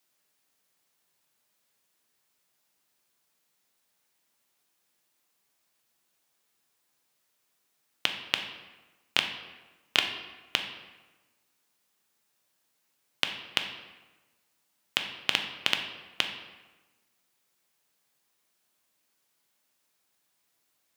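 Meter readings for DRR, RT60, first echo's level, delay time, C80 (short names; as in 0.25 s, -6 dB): 4.5 dB, 1.2 s, none, none, 9.5 dB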